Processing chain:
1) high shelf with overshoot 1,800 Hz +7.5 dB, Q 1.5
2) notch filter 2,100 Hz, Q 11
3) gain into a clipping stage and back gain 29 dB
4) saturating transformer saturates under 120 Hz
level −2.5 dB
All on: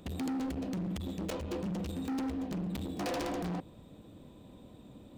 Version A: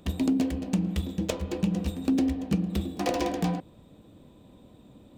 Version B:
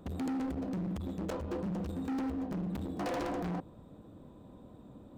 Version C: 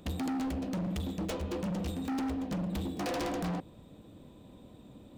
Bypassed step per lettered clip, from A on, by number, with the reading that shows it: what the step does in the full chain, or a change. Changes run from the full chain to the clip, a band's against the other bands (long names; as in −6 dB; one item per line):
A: 3, distortion level −5 dB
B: 1, 8 kHz band −6.5 dB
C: 4, change in crest factor −1.5 dB